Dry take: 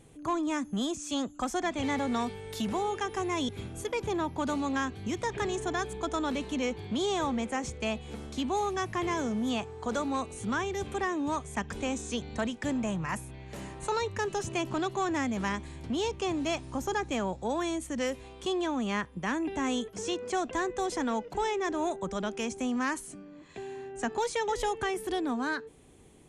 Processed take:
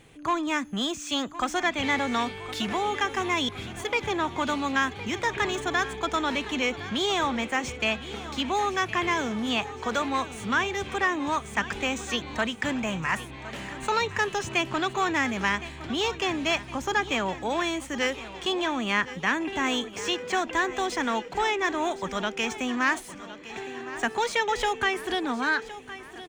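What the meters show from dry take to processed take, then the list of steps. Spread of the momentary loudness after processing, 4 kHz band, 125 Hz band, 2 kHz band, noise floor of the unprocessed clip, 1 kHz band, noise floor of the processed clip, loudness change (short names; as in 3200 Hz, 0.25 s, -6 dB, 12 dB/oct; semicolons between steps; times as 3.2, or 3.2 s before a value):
5 LU, +9.0 dB, +0.5 dB, +10.0 dB, -49 dBFS, +5.5 dB, -42 dBFS, +5.0 dB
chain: median filter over 3 samples; bell 2300 Hz +11 dB 2.4 oct; feedback echo 1.063 s, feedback 57%, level -15 dB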